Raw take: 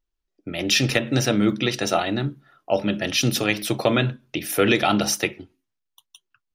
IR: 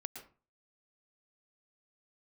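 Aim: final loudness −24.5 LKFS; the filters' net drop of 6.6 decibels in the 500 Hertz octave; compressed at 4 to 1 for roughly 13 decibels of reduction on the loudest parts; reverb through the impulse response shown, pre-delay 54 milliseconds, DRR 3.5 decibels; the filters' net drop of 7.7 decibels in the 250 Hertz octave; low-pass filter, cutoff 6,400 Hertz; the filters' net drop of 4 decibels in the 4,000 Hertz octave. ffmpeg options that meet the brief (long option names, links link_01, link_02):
-filter_complex "[0:a]lowpass=6400,equalizer=frequency=250:width_type=o:gain=-8.5,equalizer=frequency=500:width_type=o:gain=-6,equalizer=frequency=4000:width_type=o:gain=-4.5,acompressor=threshold=-35dB:ratio=4,asplit=2[link_01][link_02];[1:a]atrim=start_sample=2205,adelay=54[link_03];[link_02][link_03]afir=irnorm=-1:irlink=0,volume=-1dB[link_04];[link_01][link_04]amix=inputs=2:normalize=0,volume=11dB"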